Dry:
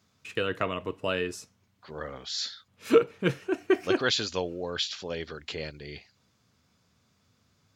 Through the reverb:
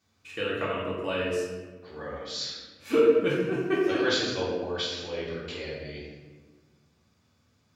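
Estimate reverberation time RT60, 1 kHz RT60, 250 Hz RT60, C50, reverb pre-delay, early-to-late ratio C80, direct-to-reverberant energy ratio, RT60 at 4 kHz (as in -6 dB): 1.4 s, 1.2 s, 2.1 s, 0.0 dB, 3 ms, 2.5 dB, -7.0 dB, 0.80 s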